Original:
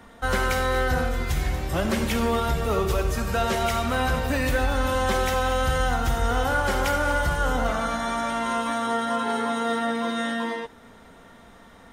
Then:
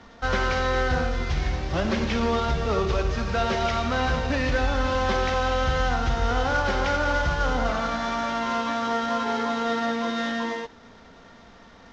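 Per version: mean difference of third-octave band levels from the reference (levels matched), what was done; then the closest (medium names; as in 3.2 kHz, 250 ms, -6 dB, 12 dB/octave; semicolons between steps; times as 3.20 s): 4.0 dB: CVSD coder 32 kbps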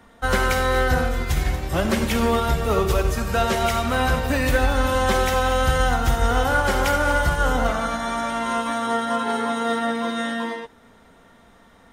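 1.5 dB: upward expansion 1.5:1, over -35 dBFS; trim +5 dB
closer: second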